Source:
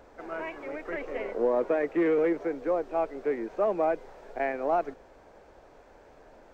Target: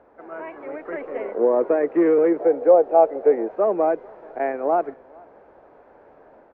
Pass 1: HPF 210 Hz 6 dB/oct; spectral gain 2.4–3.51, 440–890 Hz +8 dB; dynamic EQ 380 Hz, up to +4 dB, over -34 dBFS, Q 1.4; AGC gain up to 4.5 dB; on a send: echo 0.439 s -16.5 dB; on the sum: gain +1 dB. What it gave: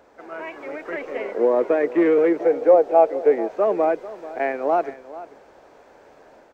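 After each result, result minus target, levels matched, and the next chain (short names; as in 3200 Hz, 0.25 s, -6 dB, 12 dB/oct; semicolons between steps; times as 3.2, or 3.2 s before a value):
echo-to-direct +10.5 dB; 2000 Hz band +5.0 dB
HPF 210 Hz 6 dB/oct; spectral gain 2.4–3.51, 440–890 Hz +8 dB; dynamic EQ 380 Hz, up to +4 dB, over -34 dBFS, Q 1.4; AGC gain up to 4.5 dB; on a send: echo 0.439 s -27 dB; on the sum: gain +1 dB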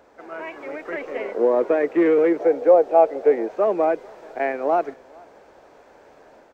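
2000 Hz band +5.0 dB
HPF 210 Hz 6 dB/oct; spectral gain 2.4–3.51, 440–890 Hz +8 dB; dynamic EQ 380 Hz, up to +4 dB, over -34 dBFS, Q 1.4; LPF 1500 Hz 12 dB/oct; AGC gain up to 4.5 dB; on a send: echo 0.439 s -27 dB; on the sum: gain +1 dB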